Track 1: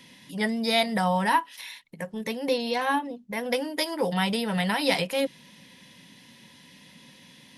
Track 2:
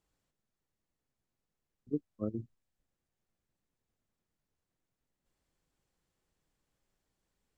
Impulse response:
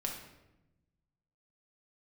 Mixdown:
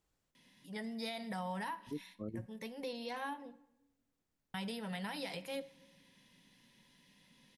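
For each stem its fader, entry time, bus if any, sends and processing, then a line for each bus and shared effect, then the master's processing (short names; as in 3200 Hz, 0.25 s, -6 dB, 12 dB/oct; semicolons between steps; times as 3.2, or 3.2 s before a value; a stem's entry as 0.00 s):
-16.5 dB, 0.35 s, muted 3.56–4.54, send -13 dB, dry
0.0 dB, 0.00 s, no send, dry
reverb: on, RT60 0.95 s, pre-delay 5 ms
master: limiter -32 dBFS, peak gain reduction 10.5 dB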